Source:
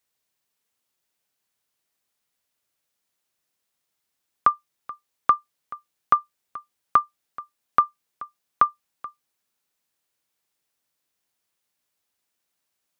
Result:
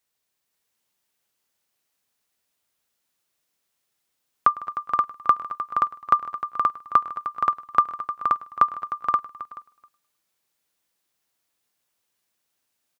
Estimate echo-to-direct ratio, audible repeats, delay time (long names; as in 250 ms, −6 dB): −1.0 dB, 12, 104 ms